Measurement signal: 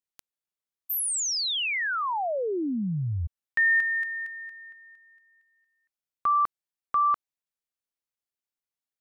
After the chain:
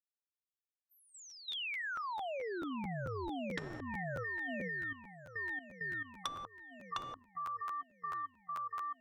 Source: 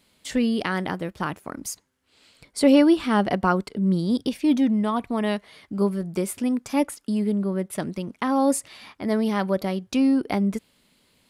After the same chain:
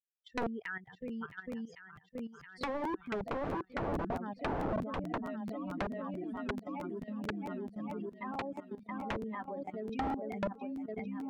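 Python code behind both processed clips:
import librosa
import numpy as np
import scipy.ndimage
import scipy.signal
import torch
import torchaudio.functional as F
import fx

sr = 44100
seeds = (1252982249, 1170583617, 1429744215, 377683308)

p1 = fx.bin_expand(x, sr, power=3.0)
p2 = scipy.signal.sosfilt(scipy.signal.butter(2, 2000.0, 'lowpass', fs=sr, output='sos'), p1)
p3 = fx.peak_eq(p2, sr, hz=81.0, db=-13.5, octaves=0.85)
p4 = p3 + fx.echo_swing(p3, sr, ms=1115, ratio=1.5, feedback_pct=50, wet_db=-7, dry=0)
p5 = fx.level_steps(p4, sr, step_db=14)
p6 = (np.mod(10.0 ** (28.0 / 20.0) * p5 + 1.0, 2.0) - 1.0) / 10.0 ** (28.0 / 20.0)
p7 = fx.env_lowpass_down(p6, sr, base_hz=740.0, full_db=-31.5)
p8 = fx.buffer_crackle(p7, sr, first_s=0.41, period_s=0.22, block=512, kind='repeat')
y = p8 * librosa.db_to_amplitude(2.5)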